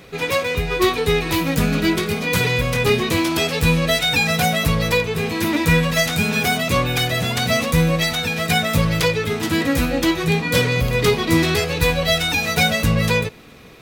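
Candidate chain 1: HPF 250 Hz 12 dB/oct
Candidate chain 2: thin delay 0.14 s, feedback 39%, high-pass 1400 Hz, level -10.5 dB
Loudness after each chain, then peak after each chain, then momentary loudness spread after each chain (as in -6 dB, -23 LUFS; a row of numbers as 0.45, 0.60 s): -19.5, -18.5 LUFS; -5.0, -3.5 dBFS; 4, 4 LU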